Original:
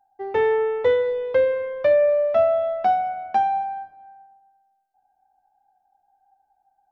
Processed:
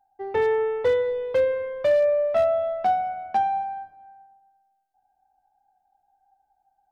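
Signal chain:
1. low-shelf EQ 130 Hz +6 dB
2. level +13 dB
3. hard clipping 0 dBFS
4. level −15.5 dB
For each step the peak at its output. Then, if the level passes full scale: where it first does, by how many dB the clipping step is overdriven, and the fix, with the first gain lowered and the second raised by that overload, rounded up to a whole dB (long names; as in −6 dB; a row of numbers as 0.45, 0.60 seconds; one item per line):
−9.0, +4.0, 0.0, −15.5 dBFS
step 2, 4.0 dB
step 2 +9 dB, step 4 −11.5 dB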